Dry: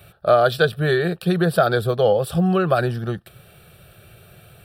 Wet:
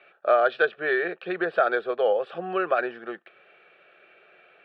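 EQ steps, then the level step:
high-pass filter 320 Hz 24 dB per octave
transistor ladder low-pass 2,600 Hz, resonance 50%
+4.0 dB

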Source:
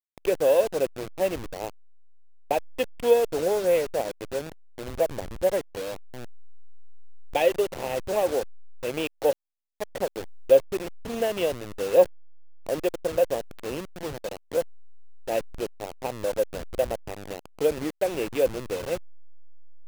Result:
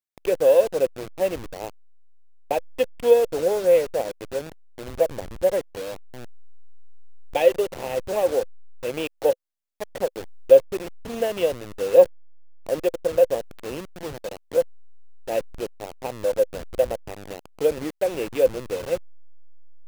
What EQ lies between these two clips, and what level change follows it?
dynamic equaliser 510 Hz, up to +6 dB, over −33 dBFS, Q 5.4
0.0 dB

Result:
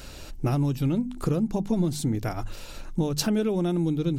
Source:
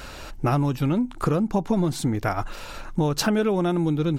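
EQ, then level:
parametric band 1,200 Hz −10.5 dB 2.3 octaves
mains-hum notches 50/100/150/200/250 Hz
0.0 dB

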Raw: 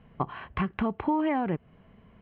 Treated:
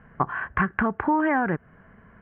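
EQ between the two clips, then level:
low-pass with resonance 1,600 Hz, resonance Q 5.2
+2.5 dB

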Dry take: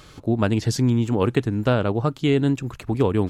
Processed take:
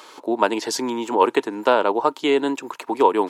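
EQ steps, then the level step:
high-pass filter 330 Hz 24 dB per octave
parametric band 940 Hz +14.5 dB 0.25 octaves
+4.0 dB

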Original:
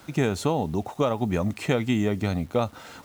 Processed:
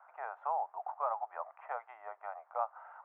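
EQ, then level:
Butterworth high-pass 690 Hz 48 dB per octave
inverse Chebyshev low-pass filter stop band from 4,100 Hz, stop band 60 dB
−2.0 dB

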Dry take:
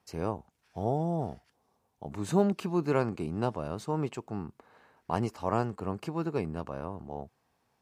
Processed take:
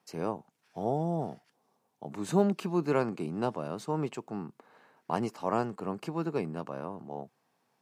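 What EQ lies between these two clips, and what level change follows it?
high-pass filter 140 Hz 24 dB per octave
0.0 dB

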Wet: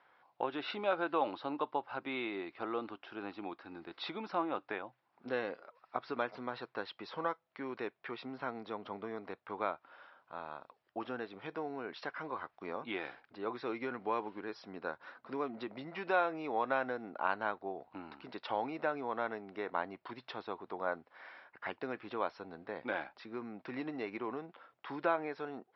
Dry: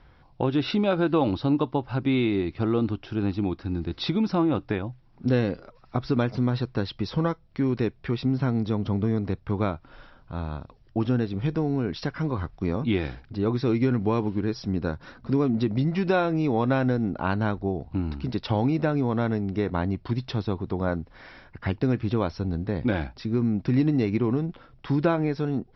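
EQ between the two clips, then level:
high-pass filter 760 Hz 12 dB per octave
low-pass filter 2,000 Hz 6 dB per octave
high-frequency loss of the air 130 metres
−1.0 dB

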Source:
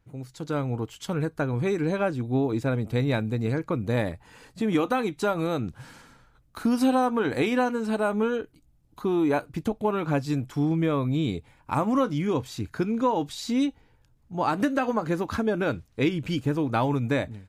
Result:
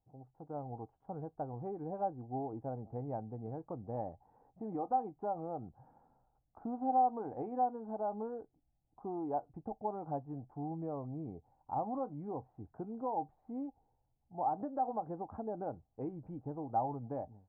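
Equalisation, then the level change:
transistor ladder low-pass 820 Hz, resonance 80%
high-frequency loss of the air 320 metres
−5.0 dB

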